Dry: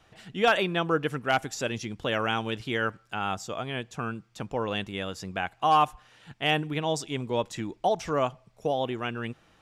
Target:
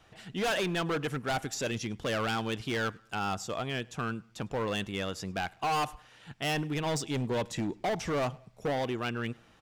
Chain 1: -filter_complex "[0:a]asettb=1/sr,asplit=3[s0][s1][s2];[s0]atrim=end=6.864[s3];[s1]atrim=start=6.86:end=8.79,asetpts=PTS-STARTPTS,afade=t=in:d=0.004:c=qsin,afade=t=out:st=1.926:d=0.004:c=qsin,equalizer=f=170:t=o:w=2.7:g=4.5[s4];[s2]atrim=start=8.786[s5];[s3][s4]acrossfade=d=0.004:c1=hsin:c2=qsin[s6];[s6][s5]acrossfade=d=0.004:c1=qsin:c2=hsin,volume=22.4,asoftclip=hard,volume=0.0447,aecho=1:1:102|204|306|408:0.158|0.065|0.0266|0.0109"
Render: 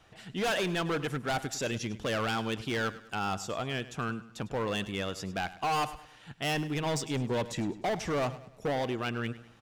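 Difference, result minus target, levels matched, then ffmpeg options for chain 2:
echo-to-direct +11 dB
-filter_complex "[0:a]asettb=1/sr,asplit=3[s0][s1][s2];[s0]atrim=end=6.864[s3];[s1]atrim=start=6.86:end=8.79,asetpts=PTS-STARTPTS,afade=t=in:d=0.004:c=qsin,afade=t=out:st=1.926:d=0.004:c=qsin,equalizer=f=170:t=o:w=2.7:g=4.5[s4];[s2]atrim=start=8.786[s5];[s3][s4]acrossfade=d=0.004:c1=hsin:c2=qsin[s6];[s6][s5]acrossfade=d=0.004:c1=qsin:c2=hsin,volume=22.4,asoftclip=hard,volume=0.0447,aecho=1:1:102|204:0.0447|0.0183"

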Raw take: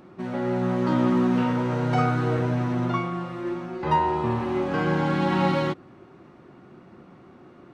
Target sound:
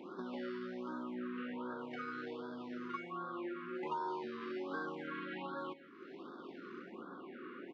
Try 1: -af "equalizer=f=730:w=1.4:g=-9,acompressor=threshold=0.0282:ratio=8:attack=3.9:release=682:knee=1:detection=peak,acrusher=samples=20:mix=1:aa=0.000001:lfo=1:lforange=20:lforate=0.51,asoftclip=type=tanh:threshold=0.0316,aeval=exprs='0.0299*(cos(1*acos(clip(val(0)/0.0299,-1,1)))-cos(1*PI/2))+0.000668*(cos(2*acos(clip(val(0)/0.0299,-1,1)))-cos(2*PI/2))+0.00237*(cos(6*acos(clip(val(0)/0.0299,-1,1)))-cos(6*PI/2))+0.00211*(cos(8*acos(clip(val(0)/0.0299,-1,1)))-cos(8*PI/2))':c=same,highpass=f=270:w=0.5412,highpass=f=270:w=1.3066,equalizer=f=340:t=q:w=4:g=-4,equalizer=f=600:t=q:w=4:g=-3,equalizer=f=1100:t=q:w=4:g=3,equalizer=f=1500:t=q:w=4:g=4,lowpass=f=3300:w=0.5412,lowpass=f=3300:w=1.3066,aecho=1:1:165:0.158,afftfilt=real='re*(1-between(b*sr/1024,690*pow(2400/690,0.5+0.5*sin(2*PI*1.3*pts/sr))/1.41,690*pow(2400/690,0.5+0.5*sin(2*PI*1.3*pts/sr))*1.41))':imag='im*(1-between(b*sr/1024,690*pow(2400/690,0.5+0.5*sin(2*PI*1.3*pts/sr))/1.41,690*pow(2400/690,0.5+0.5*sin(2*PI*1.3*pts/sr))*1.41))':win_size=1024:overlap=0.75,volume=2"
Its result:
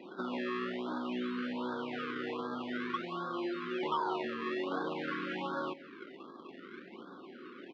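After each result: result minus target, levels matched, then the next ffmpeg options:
compression: peak gain reduction -7 dB; decimation with a swept rate: distortion +10 dB
-af "equalizer=f=730:w=1.4:g=-9,acompressor=threshold=0.0112:ratio=8:attack=3.9:release=682:knee=1:detection=peak,acrusher=samples=20:mix=1:aa=0.000001:lfo=1:lforange=20:lforate=0.51,asoftclip=type=tanh:threshold=0.0316,aeval=exprs='0.0299*(cos(1*acos(clip(val(0)/0.0299,-1,1)))-cos(1*PI/2))+0.000668*(cos(2*acos(clip(val(0)/0.0299,-1,1)))-cos(2*PI/2))+0.00237*(cos(6*acos(clip(val(0)/0.0299,-1,1)))-cos(6*PI/2))+0.00211*(cos(8*acos(clip(val(0)/0.0299,-1,1)))-cos(8*PI/2))':c=same,highpass=f=270:w=0.5412,highpass=f=270:w=1.3066,equalizer=f=340:t=q:w=4:g=-4,equalizer=f=600:t=q:w=4:g=-3,equalizer=f=1100:t=q:w=4:g=3,equalizer=f=1500:t=q:w=4:g=4,lowpass=f=3300:w=0.5412,lowpass=f=3300:w=1.3066,aecho=1:1:165:0.158,afftfilt=real='re*(1-between(b*sr/1024,690*pow(2400/690,0.5+0.5*sin(2*PI*1.3*pts/sr))/1.41,690*pow(2400/690,0.5+0.5*sin(2*PI*1.3*pts/sr))*1.41))':imag='im*(1-between(b*sr/1024,690*pow(2400/690,0.5+0.5*sin(2*PI*1.3*pts/sr))/1.41,690*pow(2400/690,0.5+0.5*sin(2*PI*1.3*pts/sr))*1.41))':win_size=1024:overlap=0.75,volume=2"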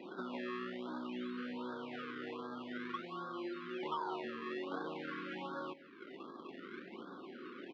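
decimation with a swept rate: distortion +10 dB
-af "equalizer=f=730:w=1.4:g=-9,acompressor=threshold=0.0112:ratio=8:attack=3.9:release=682:knee=1:detection=peak,acrusher=samples=6:mix=1:aa=0.000001:lfo=1:lforange=6:lforate=0.51,asoftclip=type=tanh:threshold=0.0316,aeval=exprs='0.0299*(cos(1*acos(clip(val(0)/0.0299,-1,1)))-cos(1*PI/2))+0.000668*(cos(2*acos(clip(val(0)/0.0299,-1,1)))-cos(2*PI/2))+0.00237*(cos(6*acos(clip(val(0)/0.0299,-1,1)))-cos(6*PI/2))+0.00211*(cos(8*acos(clip(val(0)/0.0299,-1,1)))-cos(8*PI/2))':c=same,highpass=f=270:w=0.5412,highpass=f=270:w=1.3066,equalizer=f=340:t=q:w=4:g=-4,equalizer=f=600:t=q:w=4:g=-3,equalizer=f=1100:t=q:w=4:g=3,equalizer=f=1500:t=q:w=4:g=4,lowpass=f=3300:w=0.5412,lowpass=f=3300:w=1.3066,aecho=1:1:165:0.158,afftfilt=real='re*(1-between(b*sr/1024,690*pow(2400/690,0.5+0.5*sin(2*PI*1.3*pts/sr))/1.41,690*pow(2400/690,0.5+0.5*sin(2*PI*1.3*pts/sr))*1.41))':imag='im*(1-between(b*sr/1024,690*pow(2400/690,0.5+0.5*sin(2*PI*1.3*pts/sr))/1.41,690*pow(2400/690,0.5+0.5*sin(2*PI*1.3*pts/sr))*1.41))':win_size=1024:overlap=0.75,volume=2"

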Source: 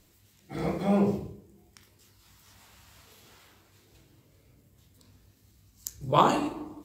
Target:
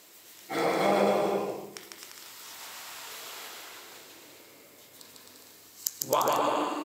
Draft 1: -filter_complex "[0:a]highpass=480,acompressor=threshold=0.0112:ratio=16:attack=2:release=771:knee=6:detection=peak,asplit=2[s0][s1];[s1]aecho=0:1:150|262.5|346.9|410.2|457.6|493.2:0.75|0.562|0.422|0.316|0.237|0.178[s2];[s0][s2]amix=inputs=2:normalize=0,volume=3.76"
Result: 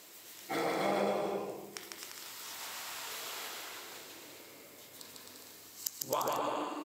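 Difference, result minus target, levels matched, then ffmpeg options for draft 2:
compression: peak gain reduction +8 dB
-filter_complex "[0:a]highpass=480,acompressor=threshold=0.0299:ratio=16:attack=2:release=771:knee=6:detection=peak,asplit=2[s0][s1];[s1]aecho=0:1:150|262.5|346.9|410.2|457.6|493.2:0.75|0.562|0.422|0.316|0.237|0.178[s2];[s0][s2]amix=inputs=2:normalize=0,volume=3.76"

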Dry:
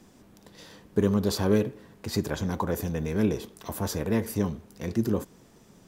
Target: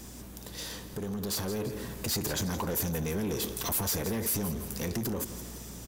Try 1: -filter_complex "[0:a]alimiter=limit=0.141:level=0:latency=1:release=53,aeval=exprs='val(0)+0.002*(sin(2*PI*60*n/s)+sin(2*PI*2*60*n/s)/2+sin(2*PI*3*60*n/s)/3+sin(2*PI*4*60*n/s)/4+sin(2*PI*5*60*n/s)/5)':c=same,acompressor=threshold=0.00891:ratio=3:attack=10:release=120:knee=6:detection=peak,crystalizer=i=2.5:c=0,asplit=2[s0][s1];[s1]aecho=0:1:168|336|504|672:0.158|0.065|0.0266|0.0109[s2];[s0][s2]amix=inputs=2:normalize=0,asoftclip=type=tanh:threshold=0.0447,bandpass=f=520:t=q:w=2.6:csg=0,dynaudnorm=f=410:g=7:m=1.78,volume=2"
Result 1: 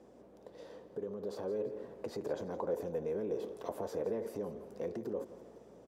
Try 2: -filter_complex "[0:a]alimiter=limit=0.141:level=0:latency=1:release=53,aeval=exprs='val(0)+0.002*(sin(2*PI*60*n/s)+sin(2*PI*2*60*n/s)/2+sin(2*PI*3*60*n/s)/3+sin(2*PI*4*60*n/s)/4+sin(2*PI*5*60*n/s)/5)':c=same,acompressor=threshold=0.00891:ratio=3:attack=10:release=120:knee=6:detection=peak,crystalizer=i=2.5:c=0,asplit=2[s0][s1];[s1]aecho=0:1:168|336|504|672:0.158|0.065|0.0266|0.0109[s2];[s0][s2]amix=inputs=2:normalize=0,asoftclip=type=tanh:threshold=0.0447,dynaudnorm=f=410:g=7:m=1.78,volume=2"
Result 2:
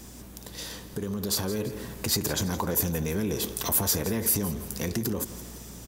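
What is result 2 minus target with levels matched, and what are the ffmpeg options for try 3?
saturation: distortion -9 dB
-filter_complex "[0:a]alimiter=limit=0.141:level=0:latency=1:release=53,aeval=exprs='val(0)+0.002*(sin(2*PI*60*n/s)+sin(2*PI*2*60*n/s)/2+sin(2*PI*3*60*n/s)/3+sin(2*PI*4*60*n/s)/4+sin(2*PI*5*60*n/s)/5)':c=same,acompressor=threshold=0.00891:ratio=3:attack=10:release=120:knee=6:detection=peak,crystalizer=i=2.5:c=0,asplit=2[s0][s1];[s1]aecho=0:1:168|336|504|672:0.158|0.065|0.0266|0.0109[s2];[s0][s2]amix=inputs=2:normalize=0,asoftclip=type=tanh:threshold=0.0133,dynaudnorm=f=410:g=7:m=1.78,volume=2"

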